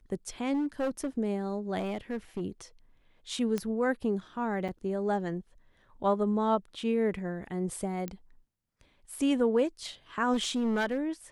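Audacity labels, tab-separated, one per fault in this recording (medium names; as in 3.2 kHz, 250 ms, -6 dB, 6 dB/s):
0.530000	1.070000	clipped -26.5 dBFS
1.780000	2.420000	clipped -29 dBFS
3.580000	3.580000	pop -18 dBFS
4.680000	4.690000	dropout 6.2 ms
8.080000	8.080000	pop -22 dBFS
10.330000	10.980000	clipped -24.5 dBFS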